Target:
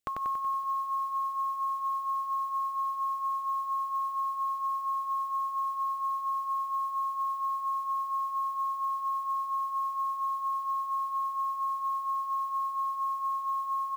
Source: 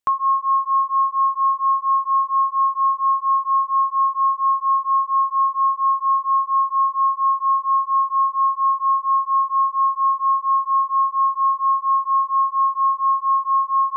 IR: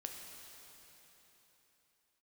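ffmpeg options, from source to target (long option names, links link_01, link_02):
-af "equalizer=frequency=1100:width=0.91:gain=-8,acompressor=threshold=-29dB:ratio=8,acrusher=bits=8:mode=log:mix=0:aa=0.000001,asuperstop=centerf=980:order=4:qfactor=5,aecho=1:1:94|188|282|376|470|564|658|752:0.708|0.404|0.23|0.131|0.0747|0.0426|0.0243|0.0138"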